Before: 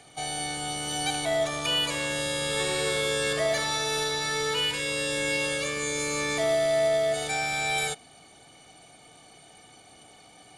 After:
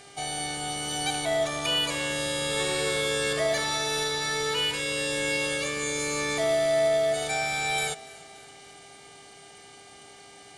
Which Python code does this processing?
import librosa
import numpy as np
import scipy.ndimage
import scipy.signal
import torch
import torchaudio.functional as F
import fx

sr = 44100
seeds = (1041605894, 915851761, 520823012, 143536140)

p1 = fx.dmg_buzz(x, sr, base_hz=400.0, harmonics=24, level_db=-52.0, tilt_db=-3, odd_only=False)
y = p1 + fx.echo_feedback(p1, sr, ms=289, feedback_pct=59, wet_db=-21.0, dry=0)